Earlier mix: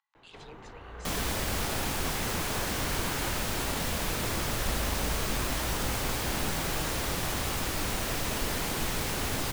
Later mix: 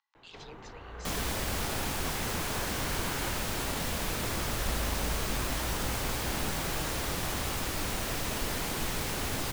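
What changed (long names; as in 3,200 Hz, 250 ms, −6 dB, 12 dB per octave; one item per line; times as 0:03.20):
speech: add low-pass with resonance 5,900 Hz, resonance Q 1.7
second sound: send −6.0 dB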